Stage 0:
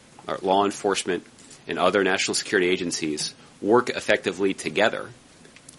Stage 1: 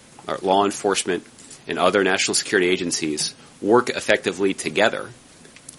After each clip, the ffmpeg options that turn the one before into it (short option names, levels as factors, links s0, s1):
-af "highshelf=f=9900:g=8.5,volume=1.33"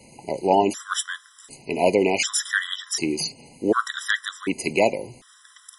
-af "afftfilt=real='re*gt(sin(2*PI*0.67*pts/sr)*(1-2*mod(floor(b*sr/1024/1000),2)),0)':imag='im*gt(sin(2*PI*0.67*pts/sr)*(1-2*mod(floor(b*sr/1024/1000),2)),0)':win_size=1024:overlap=0.75"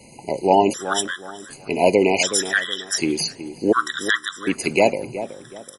-filter_complex "[0:a]asplit=2[s0][s1];[s1]adelay=372,lowpass=f=1100:p=1,volume=0.282,asplit=2[s2][s3];[s3]adelay=372,lowpass=f=1100:p=1,volume=0.34,asplit=2[s4][s5];[s5]adelay=372,lowpass=f=1100:p=1,volume=0.34,asplit=2[s6][s7];[s7]adelay=372,lowpass=f=1100:p=1,volume=0.34[s8];[s0][s2][s4][s6][s8]amix=inputs=5:normalize=0,volume=1.41"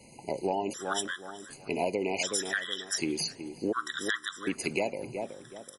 -af "acompressor=threshold=0.126:ratio=10,volume=0.422"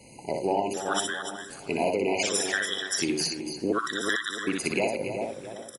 -af "aecho=1:1:61.22|288.6:0.631|0.355,volume=1.33"